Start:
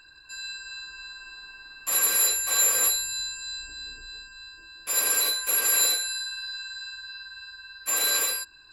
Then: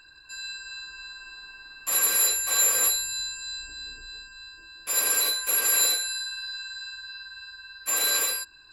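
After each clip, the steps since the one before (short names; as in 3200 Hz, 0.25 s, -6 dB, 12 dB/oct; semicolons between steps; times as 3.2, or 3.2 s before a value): nothing audible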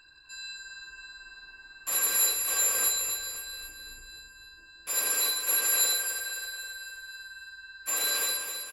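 feedback echo 0.262 s, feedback 49%, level -7.5 dB; gain -4 dB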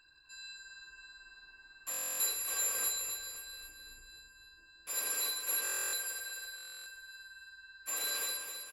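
stuck buffer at 1.9/5.63/6.56, samples 1024, times 12; gain -7.5 dB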